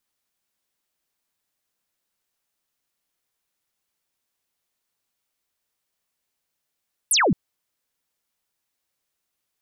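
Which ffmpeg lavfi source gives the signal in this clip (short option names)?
-f lavfi -i "aevalsrc='0.168*clip(t/0.002,0,1)*clip((0.22-t)/0.002,0,1)*sin(2*PI*12000*0.22/log(140/12000)*(exp(log(140/12000)*t/0.22)-1))':d=0.22:s=44100"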